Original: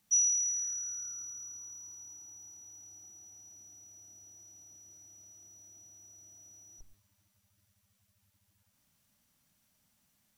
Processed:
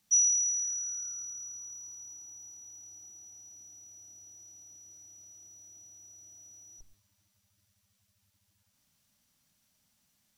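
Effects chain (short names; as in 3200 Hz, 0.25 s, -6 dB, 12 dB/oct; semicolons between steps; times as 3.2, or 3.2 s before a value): bell 4900 Hz +4.5 dB 1.6 oct; gain -1.5 dB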